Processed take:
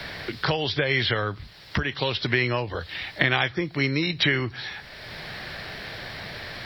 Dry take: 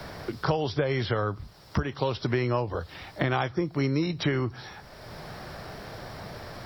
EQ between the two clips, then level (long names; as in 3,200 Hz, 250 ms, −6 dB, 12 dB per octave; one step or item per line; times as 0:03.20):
flat-topped bell 2,700 Hz +12 dB
0.0 dB